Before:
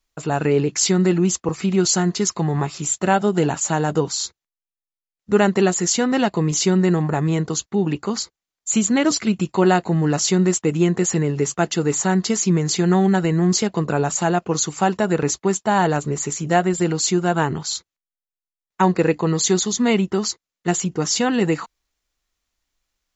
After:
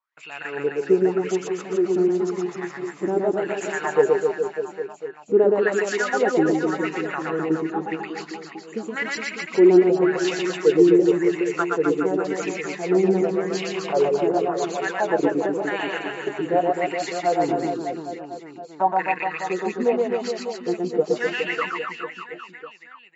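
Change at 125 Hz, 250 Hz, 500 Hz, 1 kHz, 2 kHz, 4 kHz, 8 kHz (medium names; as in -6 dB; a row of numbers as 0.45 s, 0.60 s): -14.5 dB, -4.0 dB, +1.5 dB, -2.5 dB, 0.0 dB, -9.5 dB, no reading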